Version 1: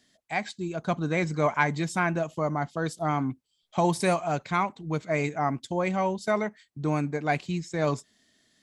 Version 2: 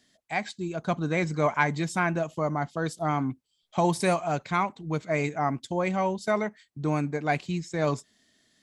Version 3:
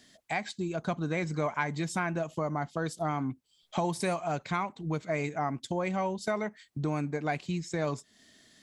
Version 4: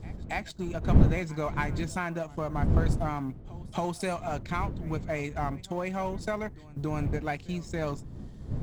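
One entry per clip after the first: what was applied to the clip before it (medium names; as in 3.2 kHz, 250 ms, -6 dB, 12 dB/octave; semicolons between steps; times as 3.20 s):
no audible change
compression 2.5:1, threshold -40 dBFS, peak gain reduction 14.5 dB; trim +6.5 dB
companding laws mixed up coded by A; wind noise 140 Hz -31 dBFS; pre-echo 278 ms -21 dB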